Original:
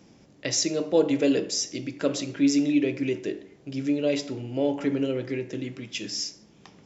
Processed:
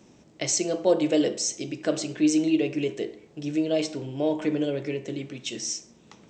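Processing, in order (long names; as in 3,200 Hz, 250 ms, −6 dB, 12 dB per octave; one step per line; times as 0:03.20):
wrong playback speed 44.1 kHz file played as 48 kHz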